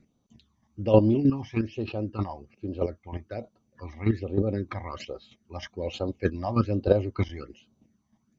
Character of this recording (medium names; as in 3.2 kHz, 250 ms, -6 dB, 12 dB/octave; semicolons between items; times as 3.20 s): chopped level 3.2 Hz, depth 65%, duty 15%; phasing stages 12, 1.2 Hz, lowest notch 430–2100 Hz; MP2